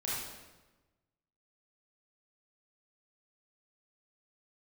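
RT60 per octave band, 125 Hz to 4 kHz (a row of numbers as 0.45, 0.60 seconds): 1.5, 1.3, 1.2, 1.1, 1.0, 0.90 seconds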